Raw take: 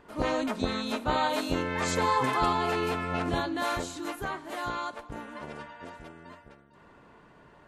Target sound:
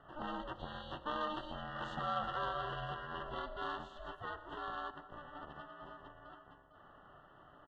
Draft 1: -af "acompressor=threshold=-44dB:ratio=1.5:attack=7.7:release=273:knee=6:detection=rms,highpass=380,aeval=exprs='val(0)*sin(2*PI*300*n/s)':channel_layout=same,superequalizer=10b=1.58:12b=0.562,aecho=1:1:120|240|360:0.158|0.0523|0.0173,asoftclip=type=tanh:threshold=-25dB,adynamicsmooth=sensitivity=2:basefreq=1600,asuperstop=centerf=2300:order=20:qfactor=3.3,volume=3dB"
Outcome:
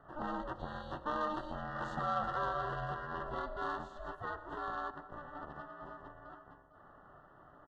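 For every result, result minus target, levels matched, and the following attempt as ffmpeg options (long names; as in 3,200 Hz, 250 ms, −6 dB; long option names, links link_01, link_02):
4,000 Hz band −8.5 dB; downward compressor: peak gain reduction −3.5 dB
-af "acompressor=threshold=-44dB:ratio=1.5:attack=7.7:release=273:knee=6:detection=rms,highpass=380,aeval=exprs='val(0)*sin(2*PI*300*n/s)':channel_layout=same,superequalizer=10b=1.58:12b=0.562,aecho=1:1:120|240|360:0.158|0.0523|0.0173,asoftclip=type=tanh:threshold=-25dB,adynamicsmooth=sensitivity=2:basefreq=1600,asuperstop=centerf=2300:order=20:qfactor=3.3,equalizer=frequency=3000:width=2.3:gain=14,volume=3dB"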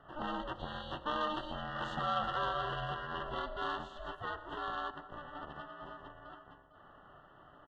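downward compressor: peak gain reduction −3.5 dB
-af "acompressor=threshold=-54.5dB:ratio=1.5:attack=7.7:release=273:knee=6:detection=rms,highpass=380,aeval=exprs='val(0)*sin(2*PI*300*n/s)':channel_layout=same,superequalizer=10b=1.58:12b=0.562,aecho=1:1:120|240|360:0.158|0.0523|0.0173,asoftclip=type=tanh:threshold=-25dB,adynamicsmooth=sensitivity=2:basefreq=1600,asuperstop=centerf=2300:order=20:qfactor=3.3,equalizer=frequency=3000:width=2.3:gain=14,volume=3dB"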